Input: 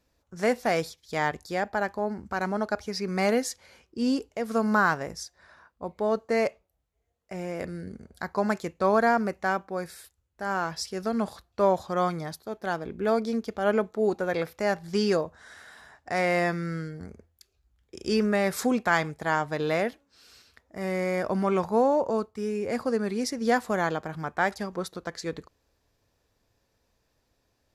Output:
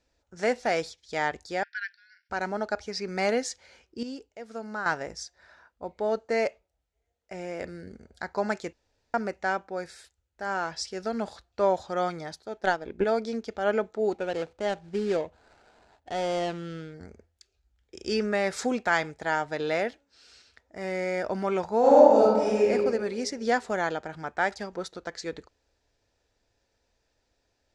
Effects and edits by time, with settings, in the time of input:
1.63–2.30 s: brick-wall FIR band-pass 1.4–5.8 kHz
4.03–4.86 s: gain -9.5 dB
8.73–9.14 s: room tone
12.61–13.04 s: transient shaper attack +12 dB, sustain -4 dB
14.12–16.94 s: median filter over 25 samples
21.79–22.68 s: reverb throw, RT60 1.5 s, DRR -8.5 dB
whole clip: low-pass 8 kHz 24 dB/octave; peaking EQ 150 Hz -7.5 dB 1.6 oct; band-stop 1.1 kHz, Q 5.8

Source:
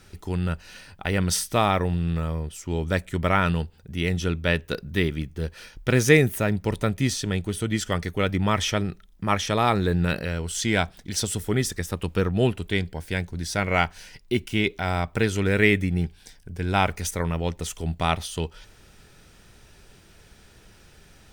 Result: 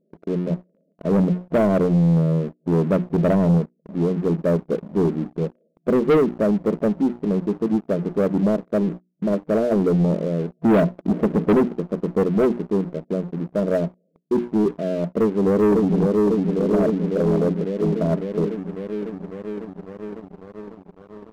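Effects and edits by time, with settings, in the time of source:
1.02–3.58 s: bass shelf 320 Hz +6.5 dB
10.63–11.68 s: waveshaping leveller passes 3
15.11–15.98 s: echo throw 550 ms, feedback 75%, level -3 dB
whole clip: hum notches 60/120/180/240/300/360 Hz; FFT band-pass 160–680 Hz; waveshaping leveller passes 3; trim -2 dB

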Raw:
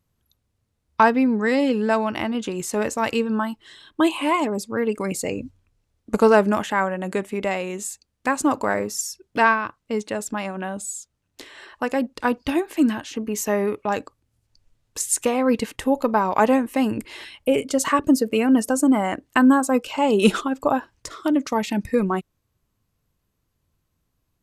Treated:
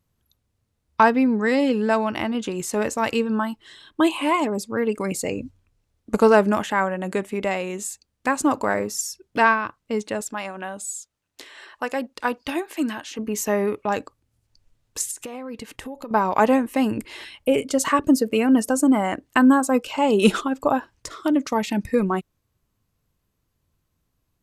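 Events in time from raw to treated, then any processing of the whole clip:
10.21–13.19 s: bass shelf 310 Hz -11 dB
15.11–16.11 s: compression 5:1, threshold -32 dBFS

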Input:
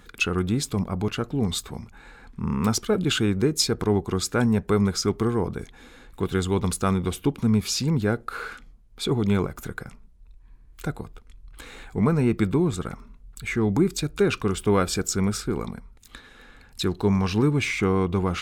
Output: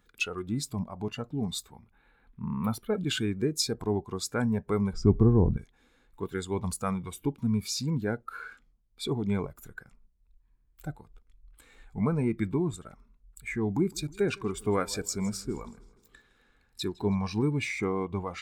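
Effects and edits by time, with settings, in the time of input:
1.72–2.94 s: high-order bell 6.2 kHz -14.5 dB 1 oct
4.93–5.57 s: tilt EQ -4 dB/octave
13.73–17.15 s: modulated delay 159 ms, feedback 58%, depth 52 cents, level -15.5 dB
whole clip: spectral noise reduction 11 dB; trim -6 dB

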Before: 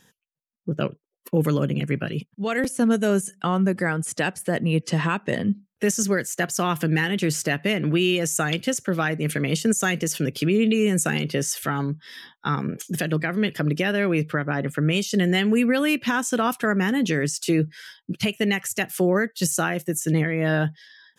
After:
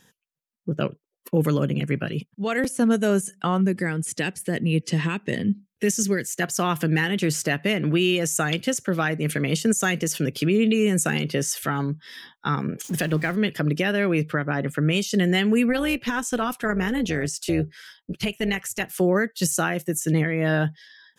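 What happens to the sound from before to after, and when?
3.61–6.42 s: high-order bell 910 Hz -8 dB
12.84–13.36 s: jump at every zero crossing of -37.5 dBFS
15.69–19.00 s: AM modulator 240 Hz, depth 35%

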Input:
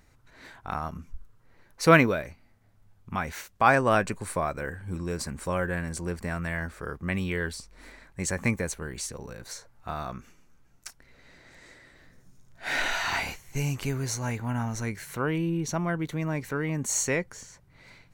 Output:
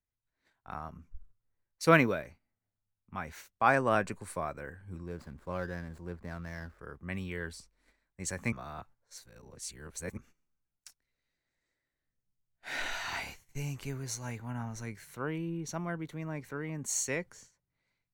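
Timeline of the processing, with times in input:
5.06–6.79 s: median filter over 15 samples
8.52–10.17 s: reverse
whole clip: gate -46 dBFS, range -10 dB; three bands expanded up and down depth 40%; trim -8.5 dB

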